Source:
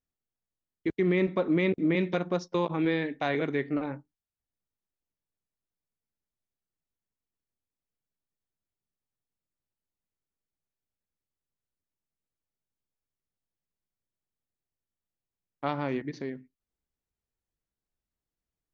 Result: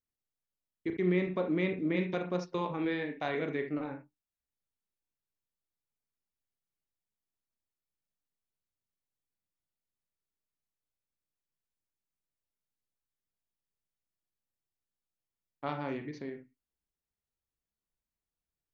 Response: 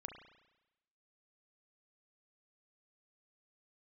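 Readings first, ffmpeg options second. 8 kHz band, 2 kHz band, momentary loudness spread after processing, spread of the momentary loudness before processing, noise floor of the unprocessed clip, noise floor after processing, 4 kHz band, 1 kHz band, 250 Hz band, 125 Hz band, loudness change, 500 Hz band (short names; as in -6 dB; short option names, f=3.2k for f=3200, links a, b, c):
n/a, -4.5 dB, 12 LU, 12 LU, under -85 dBFS, under -85 dBFS, -5.0 dB, -4.5 dB, -5.0 dB, -4.5 dB, -5.0 dB, -5.0 dB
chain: -filter_complex "[1:a]atrim=start_sample=2205,atrim=end_sample=3969[a];[0:a][a]afir=irnorm=-1:irlink=0"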